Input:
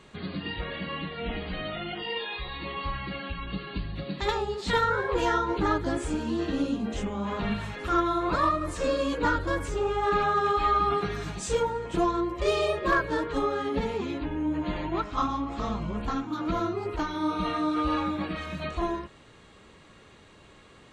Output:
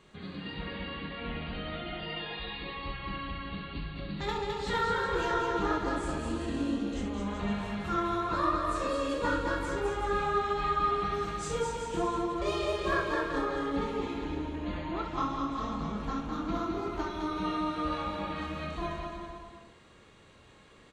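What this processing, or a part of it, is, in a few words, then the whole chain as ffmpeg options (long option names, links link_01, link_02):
slapback doubling: -filter_complex "[0:a]aecho=1:1:210|378|512.4|619.9|705.9:0.631|0.398|0.251|0.158|0.1,asplit=3[link_01][link_02][link_03];[link_02]adelay=25,volume=-8.5dB[link_04];[link_03]adelay=64,volume=-7.5dB[link_05];[link_01][link_04][link_05]amix=inputs=3:normalize=0,volume=-7dB"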